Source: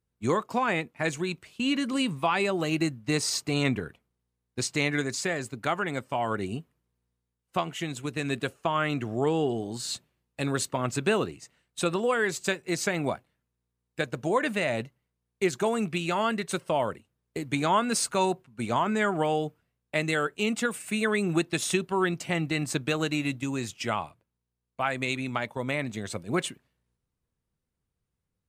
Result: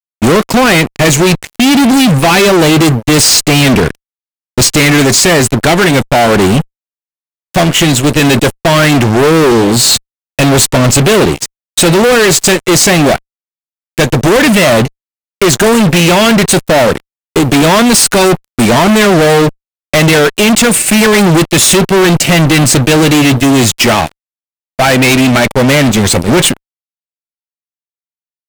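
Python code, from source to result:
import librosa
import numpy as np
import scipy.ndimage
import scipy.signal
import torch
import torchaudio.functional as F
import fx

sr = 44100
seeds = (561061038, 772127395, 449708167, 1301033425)

y = fx.peak_eq(x, sr, hz=1100.0, db=-9.5, octaves=0.88)
y = fx.fuzz(y, sr, gain_db=42.0, gate_db=-47.0)
y = y * 10.0 ** (8.0 / 20.0)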